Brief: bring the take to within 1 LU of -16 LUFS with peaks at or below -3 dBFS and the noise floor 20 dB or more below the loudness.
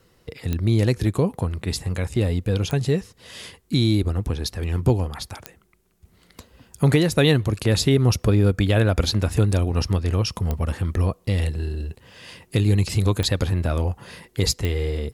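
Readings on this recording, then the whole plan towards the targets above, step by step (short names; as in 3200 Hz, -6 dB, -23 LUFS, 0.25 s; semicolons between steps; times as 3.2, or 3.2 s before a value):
clicks 6; loudness -22.0 LUFS; peak -7.0 dBFS; loudness target -16.0 LUFS
-> de-click; gain +6 dB; limiter -3 dBFS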